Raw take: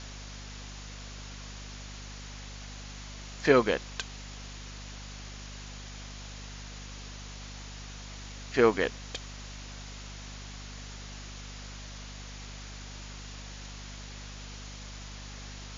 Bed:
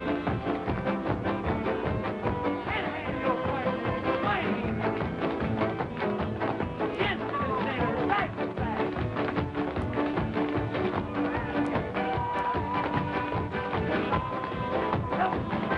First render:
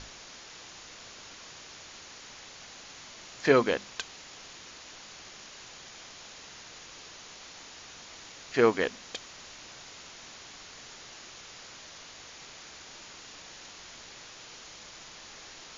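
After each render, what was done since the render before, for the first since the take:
mains-hum notches 50/100/150/200/250 Hz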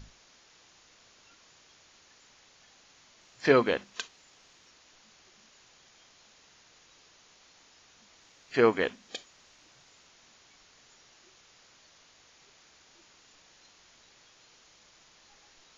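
noise reduction from a noise print 12 dB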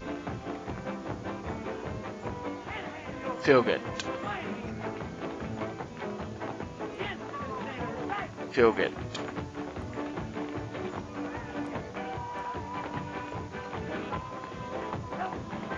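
mix in bed −7.5 dB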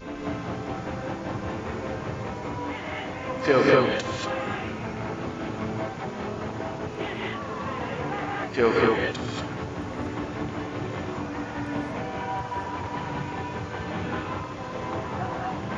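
reverb whose tail is shaped and stops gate 260 ms rising, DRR −3.5 dB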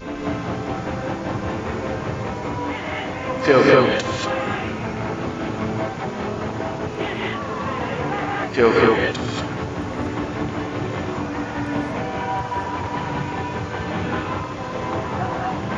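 level +6 dB
brickwall limiter −2 dBFS, peak gain reduction 1.5 dB

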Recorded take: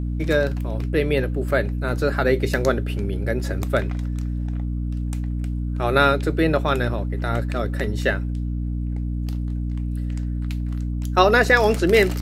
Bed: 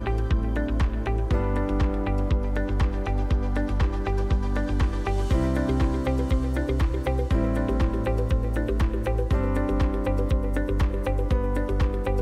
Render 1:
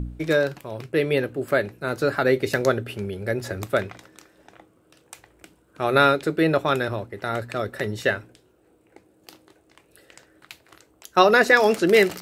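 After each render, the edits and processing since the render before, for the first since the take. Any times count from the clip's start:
hum removal 60 Hz, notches 5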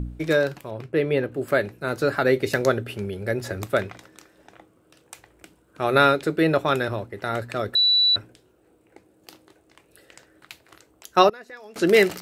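0:00.70–0:01.32: high-shelf EQ 3,200 Hz −10 dB
0:07.75–0:08.16: beep over 3,950 Hz −15 dBFS
0:11.29–0:11.76: gate with flip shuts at −14 dBFS, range −26 dB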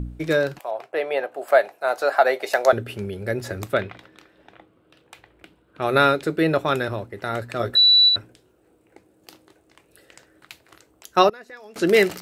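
0:00.59–0:02.73: high-pass with resonance 710 Hz, resonance Q 4.7
0:03.73–0:05.82: high shelf with overshoot 4,800 Hz −9 dB, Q 1.5
0:07.58–0:08.09: double-tracking delay 17 ms −3 dB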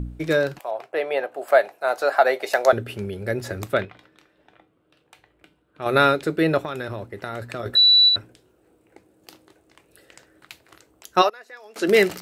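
0:03.85–0:05.86: tuned comb filter 150 Hz, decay 0.26 s
0:06.63–0:07.66: downward compressor, threshold −25 dBFS
0:11.21–0:11.87: high-pass filter 690 Hz → 310 Hz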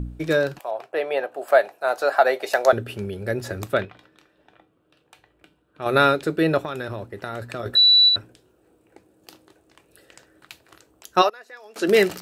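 notch filter 2,100 Hz, Q 13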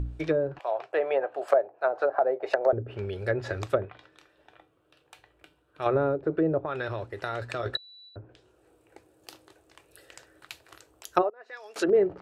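treble cut that deepens with the level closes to 480 Hz, closed at −17 dBFS
parametric band 210 Hz −12.5 dB 0.78 octaves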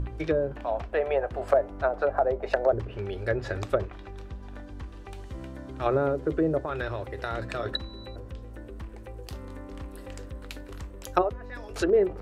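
mix in bed −16.5 dB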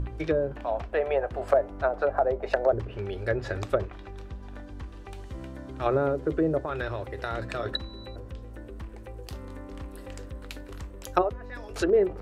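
no processing that can be heard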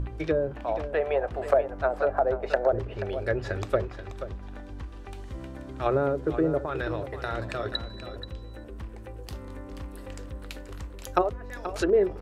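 single-tap delay 481 ms −11.5 dB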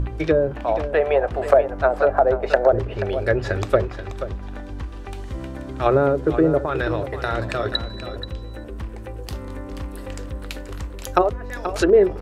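level +7.5 dB
brickwall limiter −2 dBFS, peak gain reduction 2.5 dB

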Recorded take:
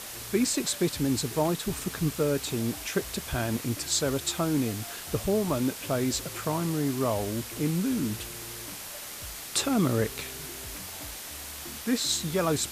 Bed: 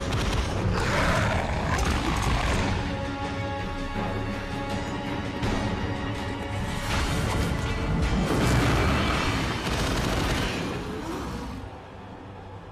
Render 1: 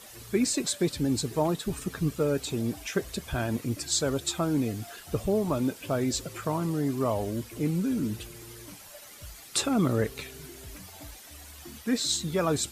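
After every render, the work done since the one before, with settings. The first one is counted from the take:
broadband denoise 11 dB, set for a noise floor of −40 dBFS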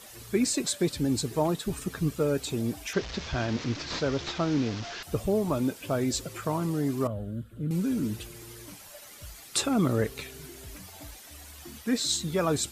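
0:02.93–0:05.03: linear delta modulator 32 kbit/s, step −32 dBFS
0:07.07–0:07.71: drawn EQ curve 200 Hz 0 dB, 380 Hz −14 dB, 560 Hz −7 dB, 920 Hz −24 dB, 1,400 Hz −3 dB, 2,200 Hz −22 dB, 3,400 Hz −12 dB, 5,600 Hz −30 dB, 8,200 Hz −20 dB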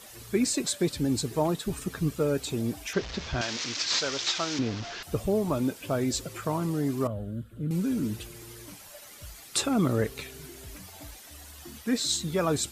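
0:03.41–0:04.59: spectral tilt +4.5 dB per octave
0:11.30–0:11.75: notch filter 2,300 Hz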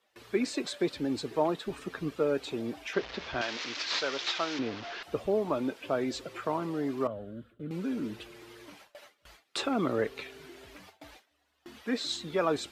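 three-way crossover with the lows and the highs turned down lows −15 dB, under 260 Hz, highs −18 dB, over 4,200 Hz
noise gate with hold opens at −41 dBFS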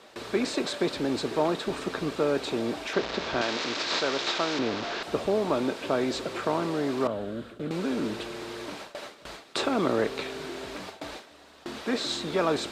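compressor on every frequency bin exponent 0.6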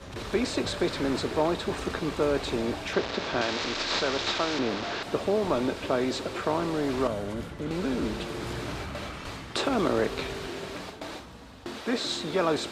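mix in bed −14.5 dB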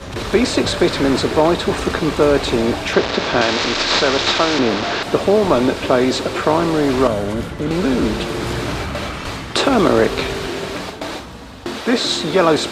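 level +12 dB
brickwall limiter −1 dBFS, peak gain reduction 2 dB

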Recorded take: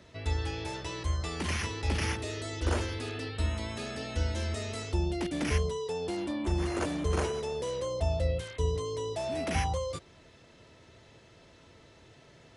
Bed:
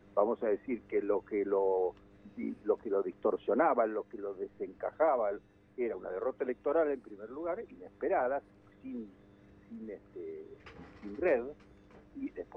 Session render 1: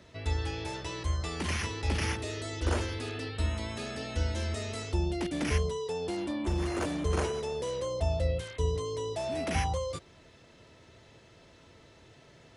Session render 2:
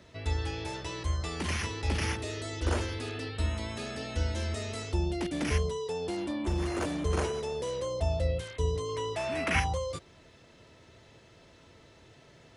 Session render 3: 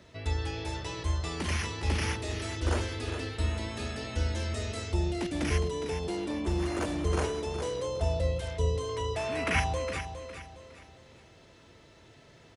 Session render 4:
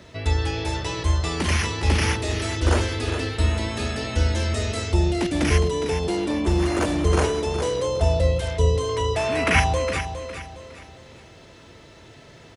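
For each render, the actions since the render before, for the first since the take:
0:06.49–0:07.05: hard clipping −25 dBFS
0:08.89–0:09.60: flat-topped bell 1,700 Hz +9 dB
repeating echo 411 ms, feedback 35%, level −9.5 dB
level +9 dB

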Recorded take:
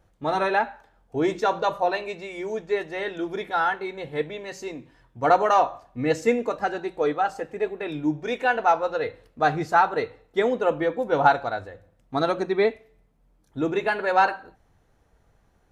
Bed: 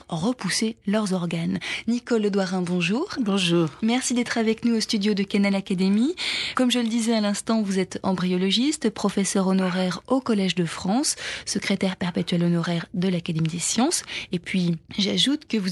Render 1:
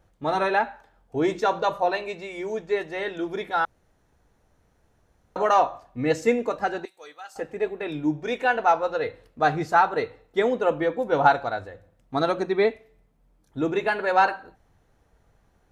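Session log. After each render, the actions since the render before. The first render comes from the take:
0:03.65–0:05.36: fill with room tone
0:06.85–0:07.36: first difference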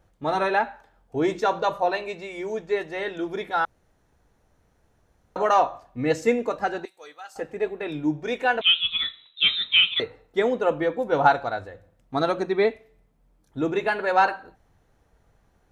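0:08.61–0:10.00: voice inversion scrambler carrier 3,900 Hz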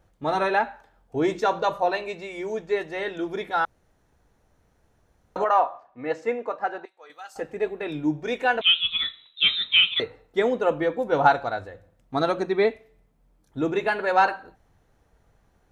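0:05.44–0:07.10: resonant band-pass 980 Hz, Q 0.84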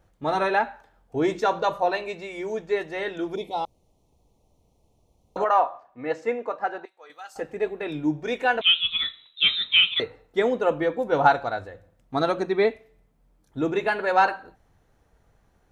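0:03.35–0:05.37: Butterworth band-reject 1,600 Hz, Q 0.92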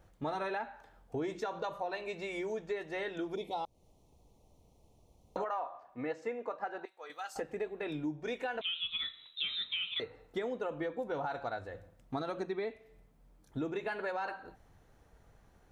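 brickwall limiter −15 dBFS, peak gain reduction 9.5 dB
downward compressor 4 to 1, threshold −36 dBFS, peak gain reduction 14 dB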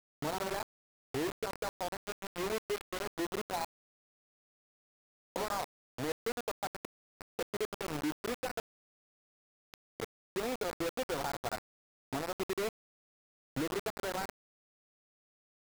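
running median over 25 samples
bit-depth reduction 6 bits, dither none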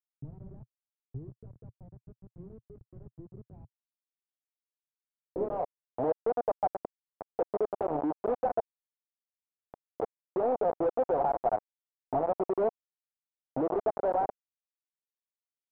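mid-hump overdrive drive 26 dB, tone 3,400 Hz, clips at −24 dBFS
low-pass filter sweep 120 Hz → 720 Hz, 0:04.80–0:05.74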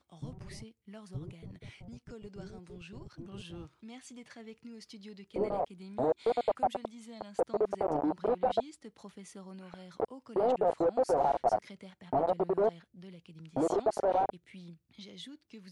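mix in bed −26.5 dB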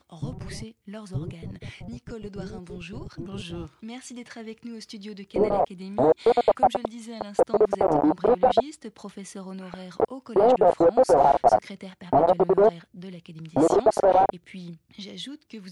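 level +10 dB

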